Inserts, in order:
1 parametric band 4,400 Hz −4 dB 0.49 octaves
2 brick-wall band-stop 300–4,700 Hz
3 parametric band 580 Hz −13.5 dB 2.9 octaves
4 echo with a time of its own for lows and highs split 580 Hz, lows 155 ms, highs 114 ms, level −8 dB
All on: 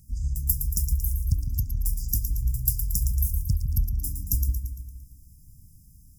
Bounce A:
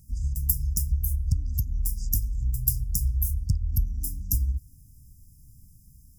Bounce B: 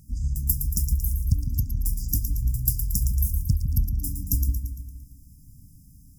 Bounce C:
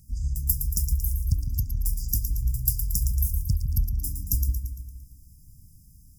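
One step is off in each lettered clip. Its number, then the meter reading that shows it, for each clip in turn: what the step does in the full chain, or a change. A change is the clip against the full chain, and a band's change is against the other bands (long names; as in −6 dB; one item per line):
4, echo-to-direct ratio −6.5 dB to none audible
3, 250 Hz band +5.0 dB
1, 4 kHz band +2.0 dB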